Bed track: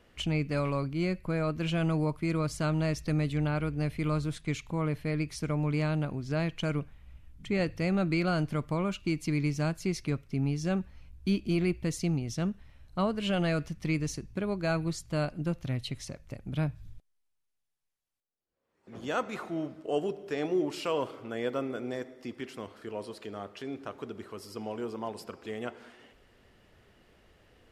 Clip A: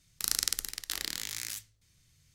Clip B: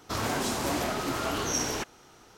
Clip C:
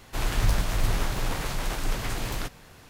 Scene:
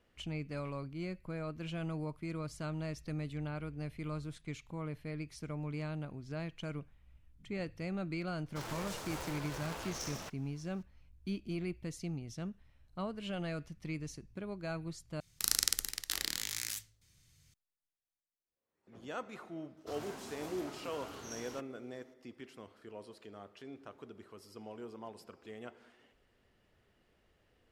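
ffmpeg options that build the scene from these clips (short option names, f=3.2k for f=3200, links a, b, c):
-filter_complex "[2:a]asplit=2[a][b];[0:a]volume=-10.5dB[c];[a]aeval=exprs='val(0)*sgn(sin(2*PI*230*n/s))':c=same[d];[b]highpass=50[e];[c]asplit=2[f][g];[f]atrim=end=15.204[h];[1:a]atrim=end=2.34,asetpts=PTS-STARTPTS,volume=-1dB[i];[g]atrim=start=17.536[j];[d]atrim=end=2.37,asetpts=PTS-STARTPTS,volume=-13.5dB,afade=t=in:d=0.004:c=hsin,afade=t=out:st=2.366:d=0.004:c=hsin,adelay=8460[k];[e]atrim=end=2.37,asetpts=PTS-STARTPTS,volume=-18dB,afade=t=in:d=0.004:c=hsin,afade=t=out:st=2.366:d=0.004:c=hsin,adelay=19770[l];[h][i]acrossfade=d=0.004:c1=hsin:c2=hsin[m];[m][j]acrossfade=d=0.004:c1=hsin:c2=hsin[n];[n][k][l]amix=inputs=3:normalize=0"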